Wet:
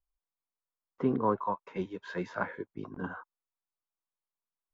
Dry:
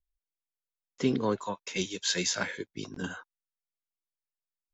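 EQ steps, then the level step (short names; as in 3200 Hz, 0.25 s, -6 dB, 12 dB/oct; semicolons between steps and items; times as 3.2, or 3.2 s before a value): synth low-pass 1100 Hz, resonance Q 2.4; -2.0 dB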